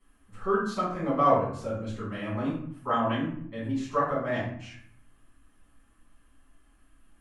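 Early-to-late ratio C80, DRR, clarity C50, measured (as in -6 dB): 7.0 dB, -11.5 dB, 2.5 dB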